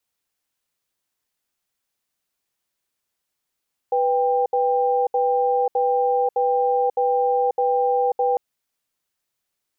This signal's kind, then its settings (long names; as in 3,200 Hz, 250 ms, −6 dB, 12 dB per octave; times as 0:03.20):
tone pair in a cadence 494 Hz, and 793 Hz, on 0.54 s, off 0.07 s, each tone −19.5 dBFS 4.45 s